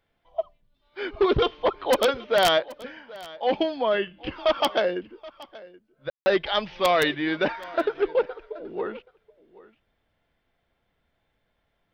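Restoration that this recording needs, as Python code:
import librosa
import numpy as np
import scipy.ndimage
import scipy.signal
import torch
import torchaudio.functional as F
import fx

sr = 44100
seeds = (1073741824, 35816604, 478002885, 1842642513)

y = fx.fix_ambience(x, sr, seeds[0], print_start_s=10.38, print_end_s=10.88, start_s=6.1, end_s=6.26)
y = fx.fix_echo_inverse(y, sr, delay_ms=777, level_db=-20.5)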